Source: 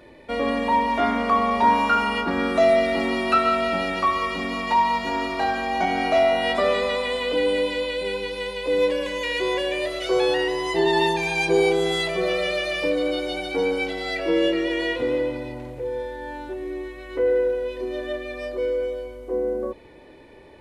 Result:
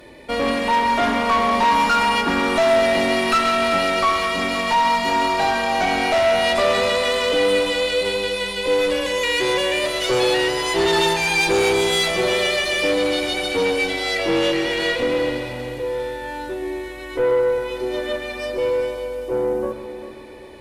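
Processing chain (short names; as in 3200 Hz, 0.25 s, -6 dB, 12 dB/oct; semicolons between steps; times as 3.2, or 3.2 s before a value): high shelf 4100 Hz +10 dB; tube stage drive 19 dB, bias 0.45; multi-head echo 0.131 s, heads first and third, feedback 57%, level -12.5 dB; gain +5.5 dB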